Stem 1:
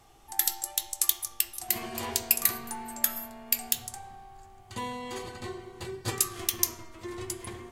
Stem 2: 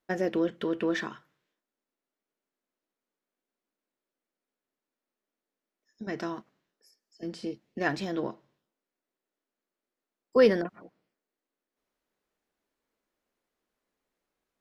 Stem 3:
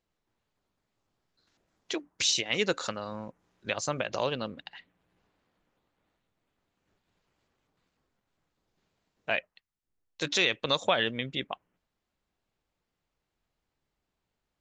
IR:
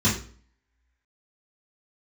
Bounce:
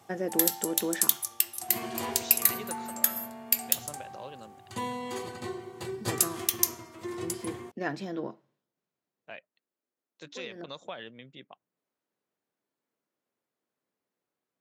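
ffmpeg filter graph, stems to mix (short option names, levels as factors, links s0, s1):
-filter_complex "[0:a]volume=1.33[s0];[1:a]volume=0.708[s1];[2:a]volume=0.211,asplit=2[s2][s3];[s3]apad=whole_len=644036[s4];[s1][s4]sidechaincompress=threshold=0.00126:ratio=8:attack=16:release=118[s5];[s0][s5][s2]amix=inputs=3:normalize=0,highpass=f=110:w=0.5412,highpass=f=110:w=1.3066,equalizer=f=3500:t=o:w=2.7:g=-3.5"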